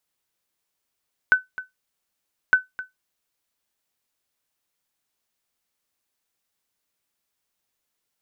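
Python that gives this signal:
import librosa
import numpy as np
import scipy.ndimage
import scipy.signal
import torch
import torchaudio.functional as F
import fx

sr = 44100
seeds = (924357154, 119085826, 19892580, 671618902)

y = fx.sonar_ping(sr, hz=1510.0, decay_s=0.16, every_s=1.21, pings=2, echo_s=0.26, echo_db=-16.5, level_db=-7.0)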